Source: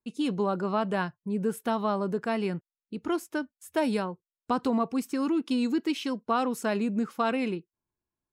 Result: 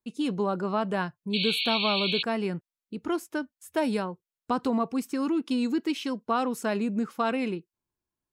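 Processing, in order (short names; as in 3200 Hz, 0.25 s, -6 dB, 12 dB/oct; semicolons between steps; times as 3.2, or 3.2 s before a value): painted sound noise, 1.33–2.23, 2200–4500 Hz -29 dBFS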